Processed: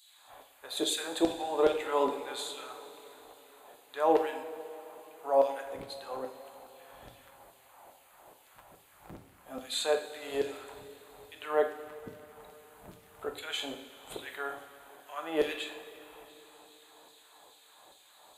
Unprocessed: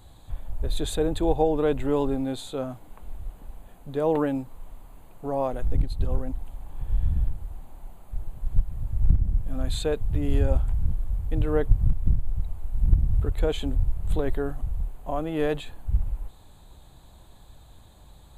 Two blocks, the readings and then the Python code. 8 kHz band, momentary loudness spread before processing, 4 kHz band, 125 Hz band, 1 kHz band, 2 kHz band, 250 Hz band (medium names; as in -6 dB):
+2.0 dB, 17 LU, +3.0 dB, -31.0 dB, 0.0 dB, +1.5 dB, -9.5 dB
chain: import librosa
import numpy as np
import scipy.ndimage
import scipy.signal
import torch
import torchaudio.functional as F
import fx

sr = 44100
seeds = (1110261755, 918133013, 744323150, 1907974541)

y = fx.filter_lfo_highpass(x, sr, shape='saw_down', hz=2.4, low_hz=420.0, high_hz=4100.0, q=1.4)
y = fx.rev_double_slope(y, sr, seeds[0], early_s=0.6, late_s=4.2, knee_db=-15, drr_db=3.0)